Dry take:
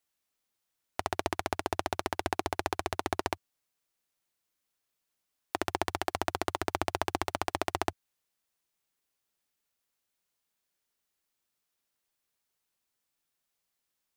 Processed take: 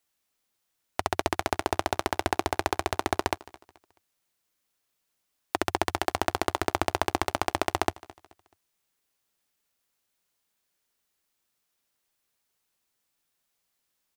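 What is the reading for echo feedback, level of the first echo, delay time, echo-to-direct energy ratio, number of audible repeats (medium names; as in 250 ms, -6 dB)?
35%, -21.0 dB, 215 ms, -20.5 dB, 2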